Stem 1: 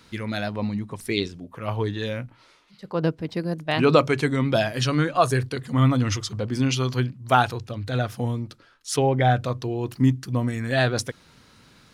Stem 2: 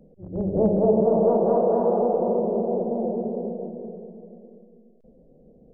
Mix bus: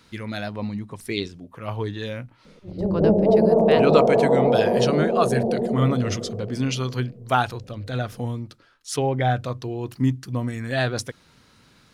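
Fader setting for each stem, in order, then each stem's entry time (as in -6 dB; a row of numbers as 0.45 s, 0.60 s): -2.0 dB, +2.5 dB; 0.00 s, 2.45 s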